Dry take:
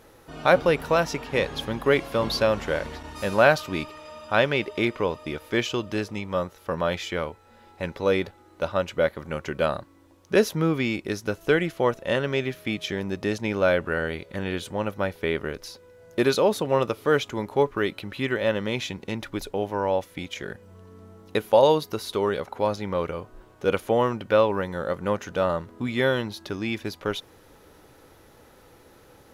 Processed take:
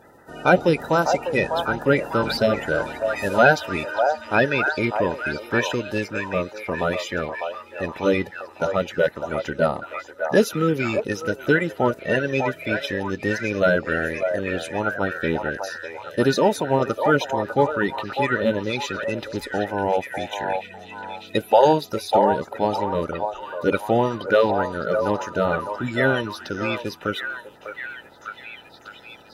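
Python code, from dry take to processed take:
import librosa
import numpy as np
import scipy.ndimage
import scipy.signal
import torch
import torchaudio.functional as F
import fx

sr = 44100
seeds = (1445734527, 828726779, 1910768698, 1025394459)

y = fx.spec_quant(x, sr, step_db=30)
y = fx.notch_comb(y, sr, f0_hz=1100.0)
y = fx.echo_stepped(y, sr, ms=600, hz=780.0, octaves=0.7, feedback_pct=70, wet_db=-2.0)
y = y * 10.0 ** (3.5 / 20.0)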